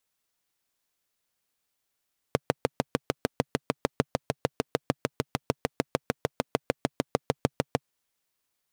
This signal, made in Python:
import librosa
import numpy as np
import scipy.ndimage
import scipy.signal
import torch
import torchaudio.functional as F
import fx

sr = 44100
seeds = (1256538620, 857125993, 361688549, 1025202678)

y = fx.engine_single(sr, seeds[0], length_s=5.46, rpm=800, resonances_hz=(140.0, 260.0, 450.0))